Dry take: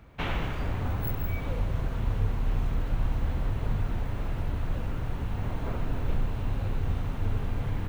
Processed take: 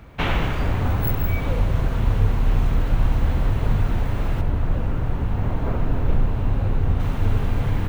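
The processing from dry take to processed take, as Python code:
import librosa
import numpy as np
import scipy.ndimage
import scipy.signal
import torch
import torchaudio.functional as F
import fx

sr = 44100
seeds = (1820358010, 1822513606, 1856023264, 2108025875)

y = fx.high_shelf(x, sr, hz=2300.0, db=-9.0, at=(4.41, 7.0))
y = y * librosa.db_to_amplitude(8.5)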